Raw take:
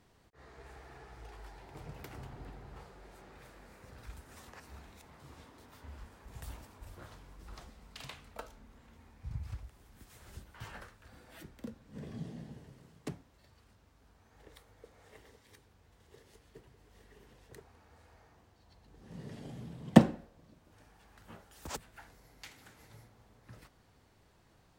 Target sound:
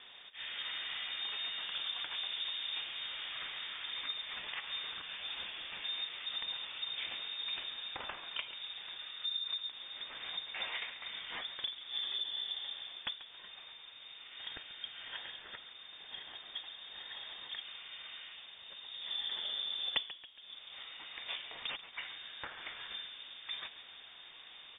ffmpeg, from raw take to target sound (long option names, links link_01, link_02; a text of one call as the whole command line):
ffmpeg -i in.wav -filter_complex "[0:a]highshelf=frequency=2500:gain=10.5,acompressor=threshold=-47dB:ratio=6,asplit=5[link_01][link_02][link_03][link_04][link_05];[link_02]adelay=138,afreqshift=87,volume=-14dB[link_06];[link_03]adelay=276,afreqshift=174,volume=-20.9dB[link_07];[link_04]adelay=414,afreqshift=261,volume=-27.9dB[link_08];[link_05]adelay=552,afreqshift=348,volume=-34.8dB[link_09];[link_01][link_06][link_07][link_08][link_09]amix=inputs=5:normalize=0,lowpass=frequency=3100:width_type=q:width=0.5098,lowpass=frequency=3100:width_type=q:width=0.6013,lowpass=frequency=3100:width_type=q:width=0.9,lowpass=frequency=3100:width_type=q:width=2.563,afreqshift=-3700,volume=11.5dB" out.wav